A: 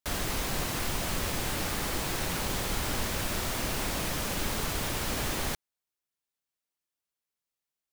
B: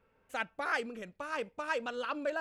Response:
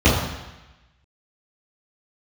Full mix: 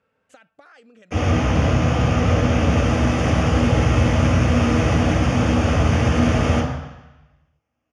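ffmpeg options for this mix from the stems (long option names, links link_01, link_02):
-filter_complex "[0:a]acrusher=samples=11:mix=1:aa=0.000001,adelay=1050,volume=1dB,asplit=2[link_01][link_02];[link_02]volume=-13dB[link_03];[1:a]alimiter=level_in=5dB:limit=-24dB:level=0:latency=1:release=42,volume=-5dB,acompressor=threshold=-47dB:ratio=16,volume=3dB,asplit=2[link_04][link_05];[link_05]apad=whole_len=395923[link_06];[link_01][link_06]sidechaincompress=threshold=-56dB:ratio=8:attack=16:release=578[link_07];[2:a]atrim=start_sample=2205[link_08];[link_03][link_08]afir=irnorm=-1:irlink=0[link_09];[link_07][link_04][link_09]amix=inputs=3:normalize=0,highpass=110,equalizer=frequency=190:width_type=q:width=4:gain=-3,equalizer=frequency=370:width_type=q:width=4:gain=-9,equalizer=frequency=950:width_type=q:width=4:gain=-6,equalizer=frequency=2200:width_type=q:width=4:gain=-3,lowpass=frequency=8600:width=0.5412,lowpass=frequency=8600:width=1.3066"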